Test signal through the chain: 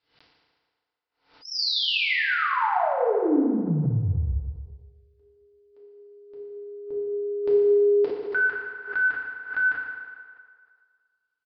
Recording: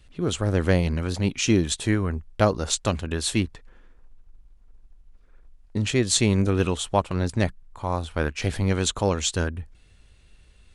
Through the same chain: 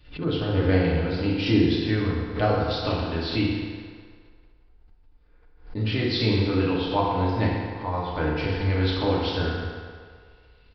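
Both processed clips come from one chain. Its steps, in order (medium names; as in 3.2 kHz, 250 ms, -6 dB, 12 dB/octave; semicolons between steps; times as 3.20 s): FDN reverb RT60 1.9 s, low-frequency decay 0.7×, high-frequency decay 0.75×, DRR -7 dB; resampled via 11.025 kHz; swell ahead of each attack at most 130 dB/s; trim -7.5 dB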